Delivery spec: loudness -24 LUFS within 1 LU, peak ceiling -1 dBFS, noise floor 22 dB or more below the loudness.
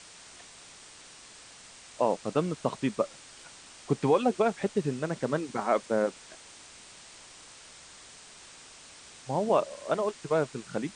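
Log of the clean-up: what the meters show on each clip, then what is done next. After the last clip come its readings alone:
noise floor -51 dBFS; noise floor target -52 dBFS; loudness -29.5 LUFS; peak -11.0 dBFS; loudness target -24.0 LUFS
-> noise print and reduce 6 dB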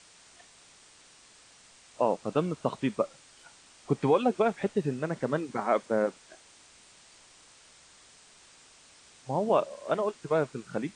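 noise floor -57 dBFS; loudness -29.5 LUFS; peak -11.0 dBFS; loudness target -24.0 LUFS
-> gain +5.5 dB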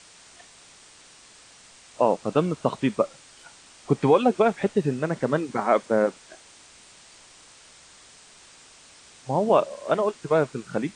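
loudness -24.0 LUFS; peak -5.5 dBFS; noise floor -51 dBFS

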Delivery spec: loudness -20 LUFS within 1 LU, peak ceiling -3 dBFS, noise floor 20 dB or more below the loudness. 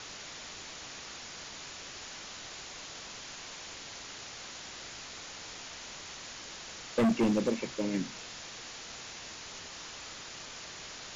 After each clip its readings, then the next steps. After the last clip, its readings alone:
clipped 0.7%; flat tops at -22.5 dBFS; noise floor -46 dBFS; noise floor target -58 dBFS; loudness -37.5 LUFS; peak -22.5 dBFS; loudness target -20.0 LUFS
-> clip repair -22.5 dBFS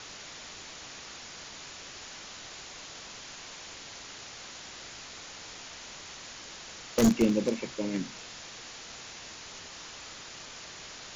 clipped 0.0%; noise floor -46 dBFS; noise floor target -56 dBFS
-> noise print and reduce 10 dB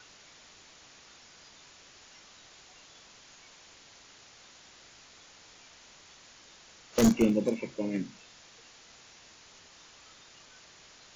noise floor -56 dBFS; loudness -28.5 LUFS; peak -13.5 dBFS; loudness target -20.0 LUFS
-> gain +8.5 dB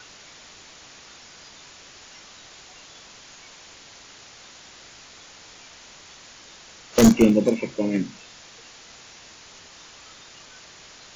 loudness -20.0 LUFS; peak -5.0 dBFS; noise floor -47 dBFS

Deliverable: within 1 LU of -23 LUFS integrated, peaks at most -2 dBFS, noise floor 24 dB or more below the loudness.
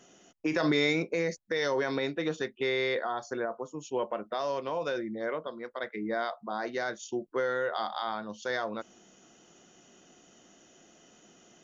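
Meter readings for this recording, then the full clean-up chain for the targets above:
loudness -32.0 LUFS; peak -16.0 dBFS; loudness target -23.0 LUFS
-> gain +9 dB

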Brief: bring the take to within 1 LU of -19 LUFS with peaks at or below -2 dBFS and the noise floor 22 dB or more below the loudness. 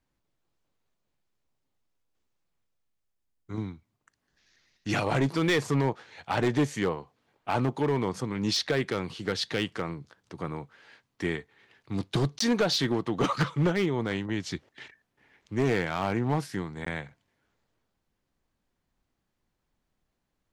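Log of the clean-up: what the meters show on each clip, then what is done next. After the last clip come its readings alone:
clipped 0.8%; flat tops at -19.0 dBFS; dropouts 2; longest dropout 14 ms; loudness -29.0 LUFS; peak -19.0 dBFS; loudness target -19.0 LUFS
-> clip repair -19 dBFS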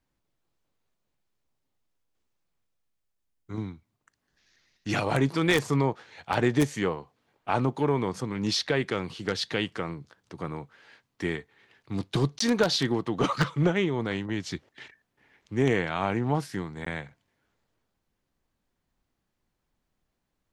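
clipped 0.0%; dropouts 2; longest dropout 14 ms
-> interpolate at 12.39/16.85, 14 ms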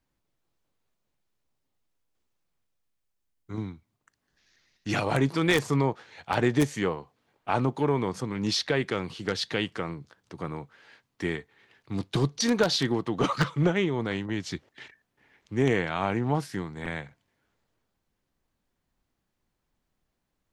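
dropouts 0; loudness -28.0 LUFS; peak -10.0 dBFS; loudness target -19.0 LUFS
-> gain +9 dB; limiter -2 dBFS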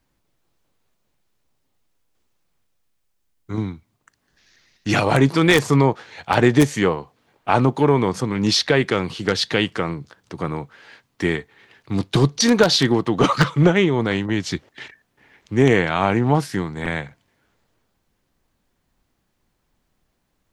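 loudness -19.5 LUFS; peak -2.0 dBFS; noise floor -71 dBFS

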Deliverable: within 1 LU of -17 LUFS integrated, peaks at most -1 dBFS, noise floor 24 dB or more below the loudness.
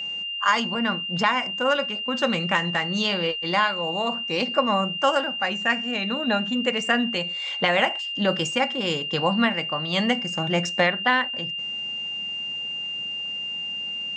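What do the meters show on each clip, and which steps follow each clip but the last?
steady tone 2800 Hz; tone level -28 dBFS; loudness -23.5 LUFS; peak -5.5 dBFS; loudness target -17.0 LUFS
-> notch 2800 Hz, Q 30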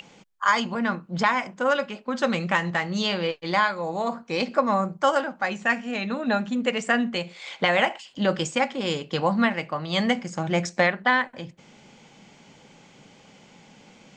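steady tone none; loudness -24.5 LUFS; peak -6.0 dBFS; loudness target -17.0 LUFS
-> gain +7.5 dB; limiter -1 dBFS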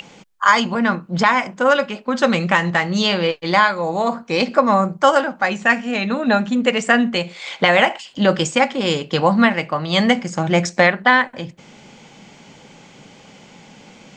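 loudness -17.5 LUFS; peak -1.0 dBFS; noise floor -46 dBFS

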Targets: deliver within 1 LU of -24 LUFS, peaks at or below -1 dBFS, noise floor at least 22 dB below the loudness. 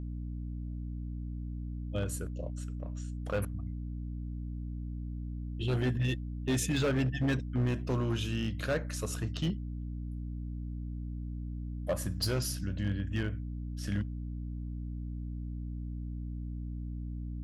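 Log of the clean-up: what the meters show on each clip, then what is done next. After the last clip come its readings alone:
clipped 1.3%; flat tops at -24.5 dBFS; hum 60 Hz; harmonics up to 300 Hz; hum level -35 dBFS; loudness -36.0 LUFS; peak -24.5 dBFS; loudness target -24.0 LUFS
-> clip repair -24.5 dBFS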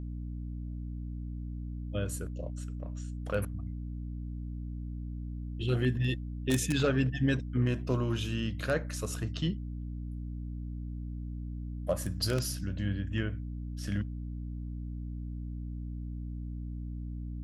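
clipped 0.0%; hum 60 Hz; harmonics up to 300 Hz; hum level -35 dBFS
-> de-hum 60 Hz, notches 5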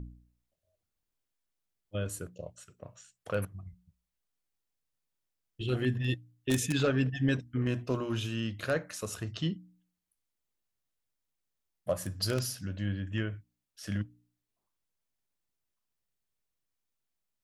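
hum none; loudness -33.5 LUFS; peak -14.5 dBFS; loudness target -24.0 LUFS
-> gain +9.5 dB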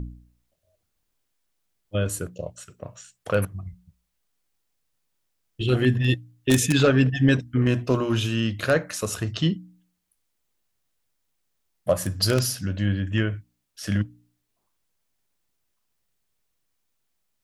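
loudness -24.0 LUFS; peak -5.0 dBFS; noise floor -76 dBFS

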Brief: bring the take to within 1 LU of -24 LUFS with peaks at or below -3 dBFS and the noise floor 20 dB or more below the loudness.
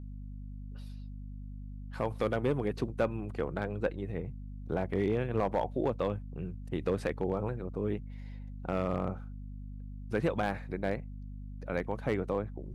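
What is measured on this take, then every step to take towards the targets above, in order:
clipped 0.3%; flat tops at -20.5 dBFS; hum 50 Hz; harmonics up to 250 Hz; hum level -40 dBFS; loudness -34.0 LUFS; peak -20.5 dBFS; loudness target -24.0 LUFS
-> clip repair -20.5 dBFS; de-hum 50 Hz, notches 5; gain +10 dB

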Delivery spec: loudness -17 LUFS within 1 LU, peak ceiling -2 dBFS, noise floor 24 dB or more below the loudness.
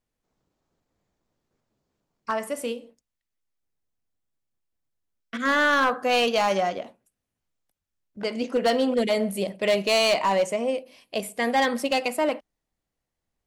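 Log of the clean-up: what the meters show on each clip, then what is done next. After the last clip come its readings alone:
clipped 0.8%; flat tops at -16.0 dBFS; loudness -24.0 LUFS; peak -16.0 dBFS; loudness target -17.0 LUFS
-> clip repair -16 dBFS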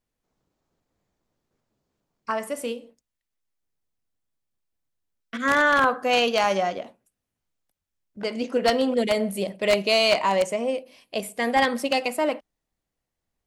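clipped 0.0%; loudness -23.5 LUFS; peak -7.0 dBFS; loudness target -17.0 LUFS
-> gain +6.5 dB; limiter -2 dBFS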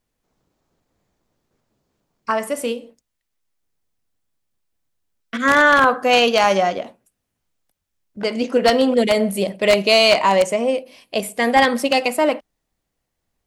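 loudness -17.0 LUFS; peak -2.0 dBFS; noise floor -78 dBFS

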